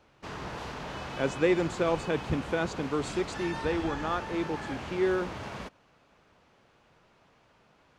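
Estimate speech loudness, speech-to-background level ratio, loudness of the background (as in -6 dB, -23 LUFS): -31.0 LUFS, 7.5 dB, -38.5 LUFS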